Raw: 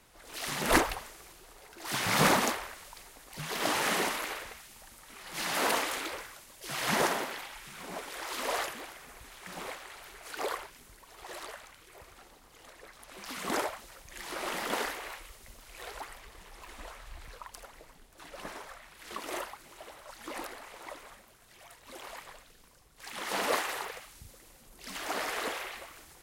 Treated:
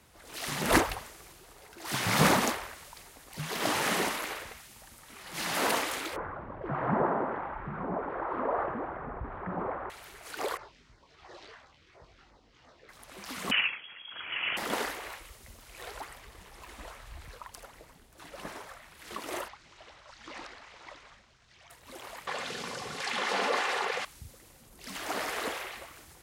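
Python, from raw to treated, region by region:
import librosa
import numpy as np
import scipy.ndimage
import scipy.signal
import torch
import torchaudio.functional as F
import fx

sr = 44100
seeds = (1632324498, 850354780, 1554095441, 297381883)

y = fx.chain(x, sr, fx.lowpass(hz=1300.0, slope=24),
    fx.env_flatten(amount_pct=50), at=(6.16, 9.9))
y = fx.chain(y, sr, fx.lowpass(hz=5400.0, slope=24),
    fx.filter_lfo_notch(shape='saw_down', hz=2.9, low_hz=360.0, high_hz=3800.0, q=1.2),
    fx.detune_double(cents=20), at=(10.57, 12.89))
y = fx.chain(y, sr, fx.freq_invert(carrier_hz=3300),
    fx.tilt_eq(slope=3.5), at=(13.51, 14.57))
y = fx.chain(y, sr, fx.lowpass(hz=6100.0, slope=24),
    fx.peak_eq(hz=380.0, db=-8.0, octaves=3.0), at=(19.48, 21.7))
y = fx.chain(y, sr, fx.bandpass_edges(low_hz=250.0, high_hz=5500.0),
    fx.notch_comb(f0_hz=320.0),
    fx.env_flatten(amount_pct=70), at=(22.27, 24.05))
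y = scipy.signal.sosfilt(scipy.signal.butter(2, 66.0, 'highpass', fs=sr, output='sos'), y)
y = fx.low_shelf(y, sr, hz=140.0, db=9.5)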